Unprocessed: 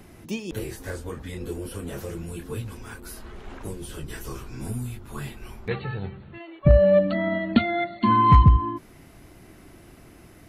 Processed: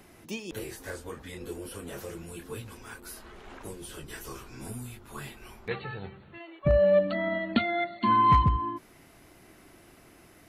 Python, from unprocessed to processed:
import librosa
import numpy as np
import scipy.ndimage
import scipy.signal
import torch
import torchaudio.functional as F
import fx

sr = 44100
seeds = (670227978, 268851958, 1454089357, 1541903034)

y = fx.low_shelf(x, sr, hz=260.0, db=-9.5)
y = y * librosa.db_to_amplitude(-2.0)